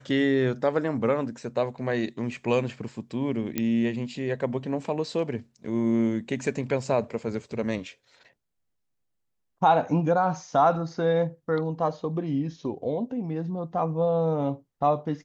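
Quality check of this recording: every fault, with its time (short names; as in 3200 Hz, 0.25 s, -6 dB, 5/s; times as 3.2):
3.58 pop -12 dBFS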